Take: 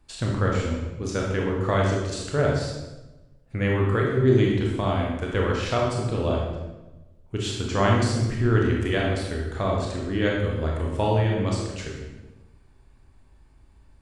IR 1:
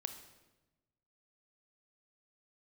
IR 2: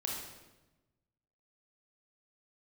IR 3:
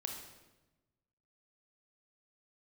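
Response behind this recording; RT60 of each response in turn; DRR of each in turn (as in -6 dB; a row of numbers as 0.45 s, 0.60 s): 2; 1.1 s, 1.1 s, 1.1 s; 8.0 dB, -2.0 dB, 2.0 dB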